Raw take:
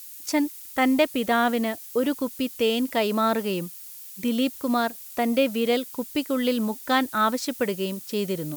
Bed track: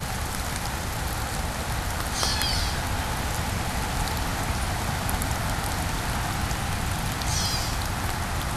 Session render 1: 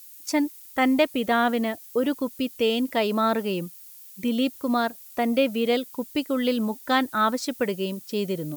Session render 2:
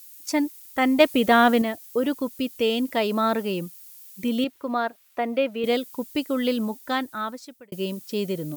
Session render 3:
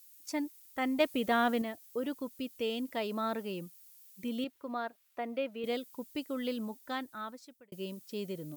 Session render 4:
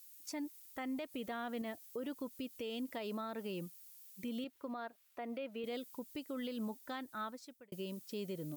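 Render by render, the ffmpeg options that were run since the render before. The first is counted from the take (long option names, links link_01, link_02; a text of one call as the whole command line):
ffmpeg -i in.wav -af "afftdn=noise_reduction=6:noise_floor=-42" out.wav
ffmpeg -i in.wav -filter_complex "[0:a]asettb=1/sr,asplit=3[link_01][link_02][link_03];[link_01]atrim=end=1.004[link_04];[link_02]atrim=start=1:end=1.62,asetpts=PTS-STARTPTS,afade=type=in:duration=0.004:curve=qsin,afade=type=out:start_time=0.616:duration=0.004:curve=qsin,acontrast=31[link_05];[link_03]atrim=start=1.616[link_06];[link_04][link_05]acrossfade=duration=0.004:curve1=hsin:curve2=qsin[link_07];[link_07][link_06]acrossfade=duration=0.004:curve1=qsin:curve2=hsin,asettb=1/sr,asplit=3[link_08][link_09][link_10];[link_08]atrim=end=4.444[link_11];[link_09]atrim=start=4.44:end=5.64,asetpts=PTS-STARTPTS,afade=type=in:duration=0.004:curve=qsin,afade=type=out:start_time=1.196:duration=0.004:curve=qsin,bass=frequency=250:gain=-11,treble=frequency=4000:gain=-14[link_12];[link_10]atrim=start=5.636[link_13];[link_11][link_12]acrossfade=duration=0.004:curve1=hsin:curve2=qsin[link_14];[link_14][link_13]acrossfade=duration=0.004:curve1=qsin:curve2=hsin,asplit=2[link_15][link_16];[link_15]atrim=end=7.72,asetpts=PTS-STARTPTS,afade=type=out:start_time=6.52:duration=1.2[link_17];[link_16]atrim=start=7.72,asetpts=PTS-STARTPTS,afade=type=in:duration=0.004:curve=hsin[link_18];[link_17][link_18]concat=n=2:v=0:a=1" out.wav
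ffmpeg -i in.wav -af "volume=-11.5dB" out.wav
ffmpeg -i in.wav -af "acompressor=threshold=-35dB:ratio=3,alimiter=level_in=9.5dB:limit=-24dB:level=0:latency=1:release=134,volume=-9.5dB" out.wav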